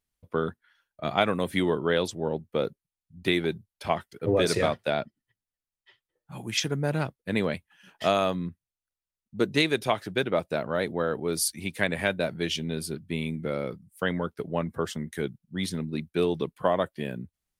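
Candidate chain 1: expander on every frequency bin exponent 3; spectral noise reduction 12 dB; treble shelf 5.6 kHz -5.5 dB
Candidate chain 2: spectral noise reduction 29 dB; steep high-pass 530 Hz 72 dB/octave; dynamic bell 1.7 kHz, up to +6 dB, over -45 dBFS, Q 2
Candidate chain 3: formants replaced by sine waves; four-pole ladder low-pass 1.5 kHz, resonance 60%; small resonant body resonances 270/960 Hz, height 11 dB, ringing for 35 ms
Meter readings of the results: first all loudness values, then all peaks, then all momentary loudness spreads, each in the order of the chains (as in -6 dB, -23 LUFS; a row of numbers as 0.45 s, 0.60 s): -36.0 LUFS, -30.0 LUFS, -35.5 LUFS; -13.5 dBFS, -7.0 dBFS, -17.0 dBFS; 16 LU, 15 LU, 11 LU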